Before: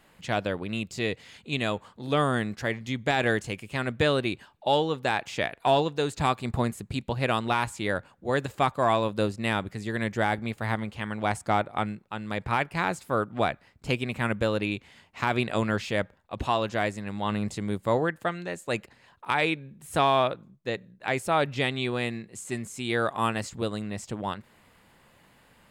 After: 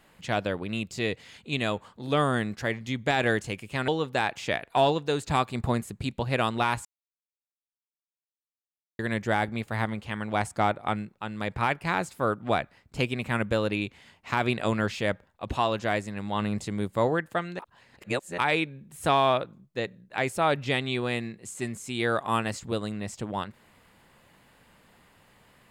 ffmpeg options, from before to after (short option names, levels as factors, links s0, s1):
-filter_complex "[0:a]asplit=6[s0][s1][s2][s3][s4][s5];[s0]atrim=end=3.882[s6];[s1]atrim=start=4.778:end=7.75,asetpts=PTS-STARTPTS,afade=t=out:st=2.968:d=0.004:c=hsin[s7];[s2]atrim=start=7.75:end=9.89,asetpts=PTS-STARTPTS,volume=0[s8];[s3]atrim=start=9.89:end=18.492,asetpts=PTS-STARTPTS,afade=t=in:d=0.004:c=hsin[s9];[s4]atrim=start=18.488:end=19.282,asetpts=PTS-STARTPTS,areverse[s10];[s5]atrim=start=19.278[s11];[s7][s8][s9]concat=n=3:v=0:a=1[s12];[s6][s12]acrossfade=d=0.004:c1=hsin:c2=hsin[s13];[s13][s10]acrossfade=d=0.004:c1=hsin:c2=hsin[s14];[s14][s11]acrossfade=d=0.004:c1=hsin:c2=hsin"